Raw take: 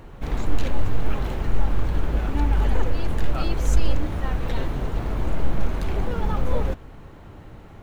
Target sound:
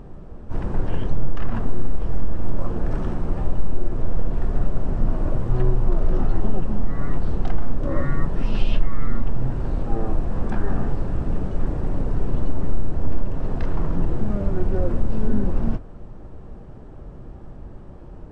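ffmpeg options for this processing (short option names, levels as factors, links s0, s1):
-af "acompressor=threshold=0.178:ratio=4,asetrate=18846,aresample=44100,highshelf=f=3000:g=-11,volume=1.78"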